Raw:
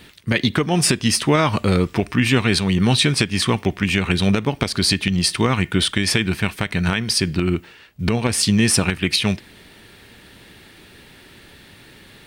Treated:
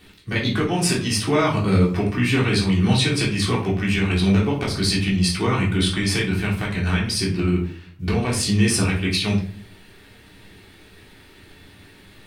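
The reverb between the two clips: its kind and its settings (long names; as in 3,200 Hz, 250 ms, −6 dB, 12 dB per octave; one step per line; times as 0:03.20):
rectangular room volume 380 cubic metres, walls furnished, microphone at 3.5 metres
level −9 dB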